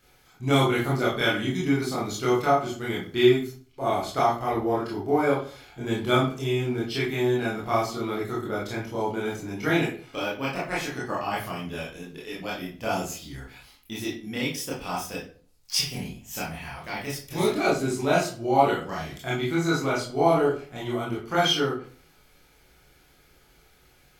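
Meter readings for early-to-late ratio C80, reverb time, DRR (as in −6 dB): 10.5 dB, 0.45 s, −7.0 dB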